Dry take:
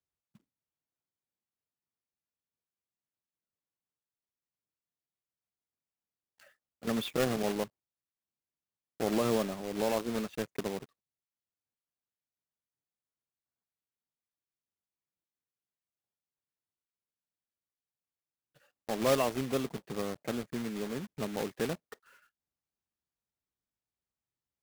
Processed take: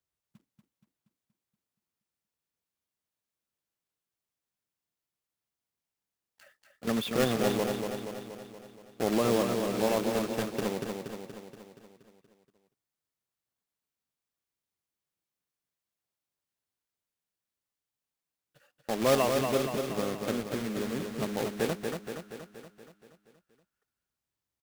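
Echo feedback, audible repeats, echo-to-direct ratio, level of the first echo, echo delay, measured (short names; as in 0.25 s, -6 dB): 58%, 7, -3.0 dB, -5.0 dB, 0.237 s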